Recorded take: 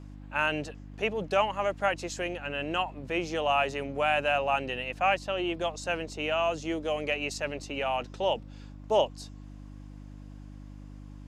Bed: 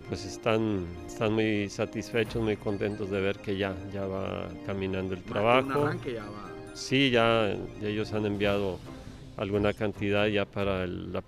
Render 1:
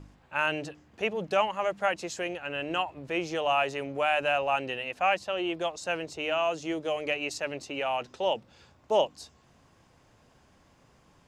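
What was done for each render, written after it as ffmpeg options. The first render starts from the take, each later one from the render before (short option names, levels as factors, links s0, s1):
-af "bandreject=f=50:t=h:w=4,bandreject=f=100:t=h:w=4,bandreject=f=150:t=h:w=4,bandreject=f=200:t=h:w=4,bandreject=f=250:t=h:w=4,bandreject=f=300:t=h:w=4"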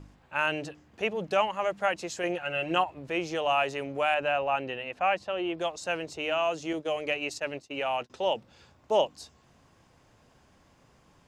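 -filter_complex "[0:a]asettb=1/sr,asplit=3[s0][s1][s2];[s0]atrim=end=2.234[s3];[s1]atrim=start=2.23:end=2.84,asetpts=PTS-STARTPTS,afade=t=in:d=0.004:c=qsin,afade=t=out:st=0.606:d=0.004:c=qsin,aecho=1:1:5.6:0.83,atrim=end_sample=26901[s4];[s2]atrim=start=2.836[s5];[s3][s4]acrossfade=d=0.004:c1=hsin:c2=qsin[s6];[s6][s5]acrossfade=d=0.004:c1=qsin:c2=hsin,asettb=1/sr,asplit=3[s7][s8][s9];[s7]atrim=end=4.144[s10];[s8]atrim=start=4.14:end=5.58,asetpts=PTS-STARTPTS,afade=t=in:d=0.004:c=qsin,afade=t=out:st=1.436:d=0.004:c=qsin,lowpass=f=2700:p=1[s11];[s9]atrim=start=5.576[s12];[s10][s11]acrossfade=d=0.004:c1=hsin:c2=qsin[s13];[s13][s12]acrossfade=d=0.004:c1=qsin:c2=hsin,asettb=1/sr,asplit=3[s14][s15][s16];[s14]atrim=end=6.734[s17];[s15]atrim=start=6.73:end=8.1,asetpts=PTS-STARTPTS,afade=t=in:d=0.004:c=qsin,afade=t=out:st=1.366:d=0.004:c=qsin,agate=range=0.0224:threshold=0.0158:ratio=3:release=100:detection=peak[s18];[s16]atrim=start=8.096[s19];[s17][s18]acrossfade=d=0.004:c1=hsin:c2=qsin[s20];[s20][s19]acrossfade=d=0.004:c1=qsin:c2=hsin"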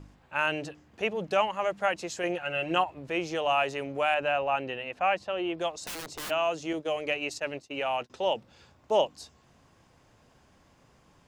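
-filter_complex "[0:a]asplit=3[s0][s1][s2];[s0]afade=t=out:st=5.84:d=0.02[s3];[s1]aeval=exprs='(mod(42.2*val(0)+1,2)-1)/42.2':c=same,afade=t=in:st=5.84:d=0.02,afade=t=out:st=6.29:d=0.02[s4];[s2]afade=t=in:st=6.29:d=0.02[s5];[s3][s4][s5]amix=inputs=3:normalize=0"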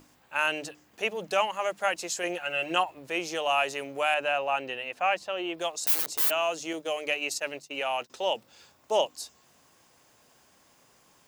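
-af "aemphasis=mode=production:type=bsi,bandreject=f=50:t=h:w=6,bandreject=f=100:t=h:w=6,bandreject=f=150:t=h:w=6,bandreject=f=200:t=h:w=6"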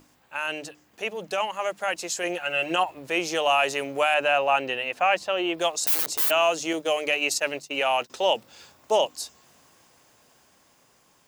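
-af "alimiter=limit=0.141:level=0:latency=1:release=12,dynaudnorm=f=720:g=7:m=2.11"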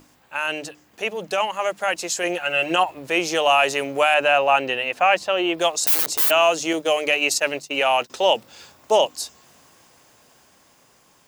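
-af "volume=1.68"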